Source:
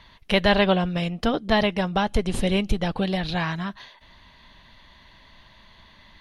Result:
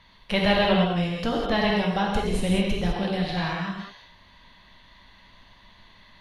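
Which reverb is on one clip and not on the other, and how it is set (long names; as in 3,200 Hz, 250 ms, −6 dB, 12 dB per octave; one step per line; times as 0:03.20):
reverb whose tail is shaped and stops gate 230 ms flat, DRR −2.5 dB
level −5.5 dB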